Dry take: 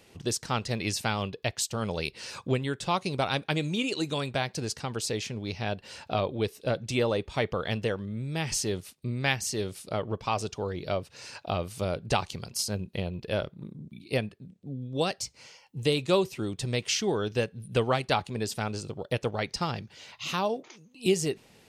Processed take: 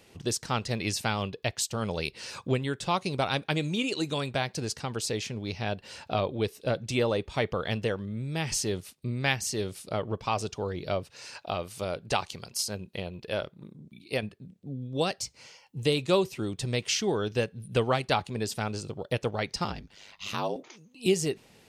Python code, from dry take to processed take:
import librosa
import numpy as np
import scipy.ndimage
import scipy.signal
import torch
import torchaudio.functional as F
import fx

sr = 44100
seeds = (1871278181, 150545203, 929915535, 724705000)

y = fx.low_shelf(x, sr, hz=280.0, db=-7.5, at=(11.1, 14.23))
y = fx.ring_mod(y, sr, carrier_hz=50.0, at=(19.64, 20.56))